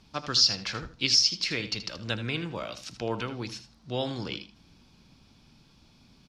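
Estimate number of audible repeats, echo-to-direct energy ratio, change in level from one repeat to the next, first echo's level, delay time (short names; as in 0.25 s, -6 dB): 2, -12.0 dB, -16.5 dB, -12.0 dB, 79 ms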